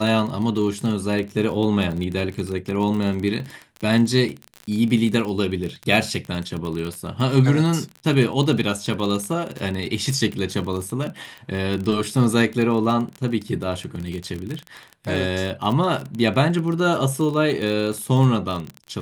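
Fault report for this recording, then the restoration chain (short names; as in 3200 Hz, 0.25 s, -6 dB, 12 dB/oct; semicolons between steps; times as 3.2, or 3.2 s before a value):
crackle 29/s -25 dBFS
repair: de-click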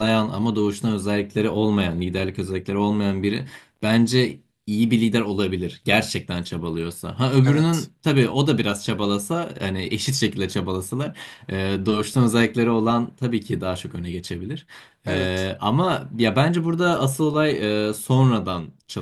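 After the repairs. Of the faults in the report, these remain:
none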